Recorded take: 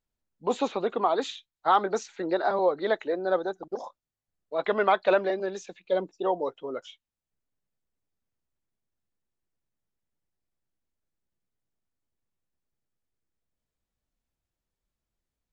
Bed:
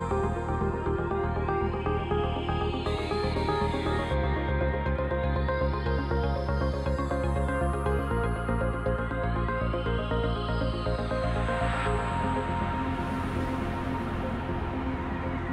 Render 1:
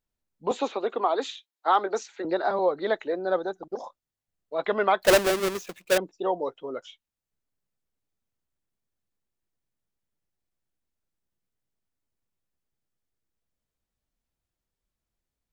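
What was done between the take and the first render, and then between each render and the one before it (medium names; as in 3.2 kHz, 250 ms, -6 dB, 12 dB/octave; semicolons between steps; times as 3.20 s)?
0.51–2.25 s: high-pass 260 Hz 24 dB/octave; 5.02–5.98 s: square wave that keeps the level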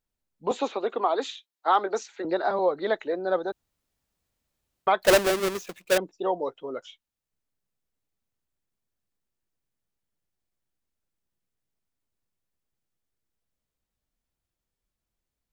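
3.52–4.87 s: room tone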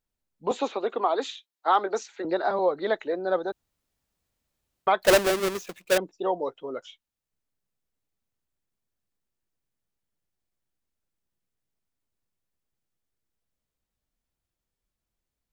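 no audible change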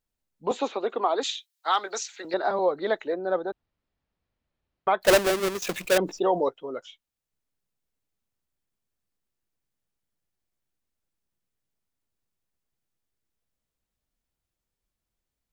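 1.23–2.34 s: tilt shelf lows -10 dB, about 1.4 kHz; 3.14–5.01 s: distance through air 230 m; 5.62–6.49 s: level flattener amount 50%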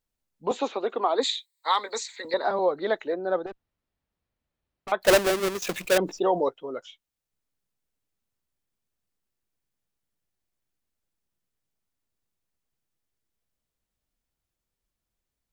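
1.18–2.45 s: rippled EQ curve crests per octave 0.99, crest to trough 12 dB; 3.46–4.92 s: valve stage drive 34 dB, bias 0.5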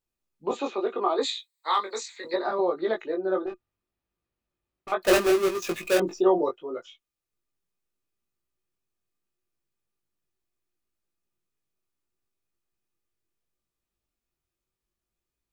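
chorus 0.72 Hz, delay 17.5 ms, depth 3.7 ms; small resonant body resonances 360/1200/2500 Hz, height 11 dB, ringing for 70 ms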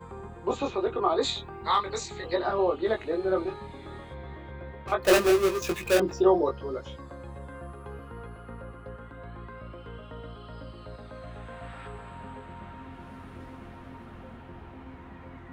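add bed -14 dB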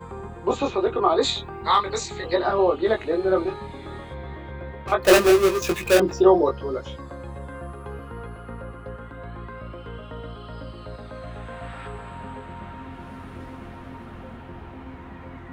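trim +5.5 dB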